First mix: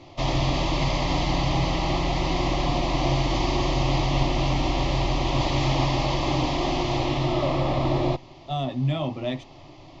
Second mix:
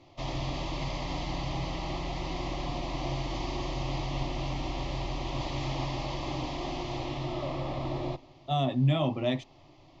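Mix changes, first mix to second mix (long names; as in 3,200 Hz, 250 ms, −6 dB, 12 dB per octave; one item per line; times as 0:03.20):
background −11.0 dB
reverb: on, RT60 1.1 s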